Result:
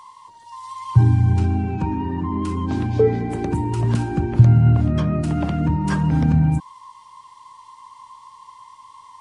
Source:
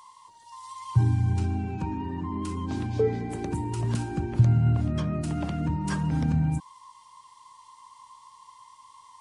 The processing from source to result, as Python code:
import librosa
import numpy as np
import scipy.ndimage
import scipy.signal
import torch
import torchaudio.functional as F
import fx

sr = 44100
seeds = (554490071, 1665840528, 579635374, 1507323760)

y = fx.high_shelf(x, sr, hz=4200.0, db=-9.0)
y = F.gain(torch.from_numpy(y), 8.0).numpy()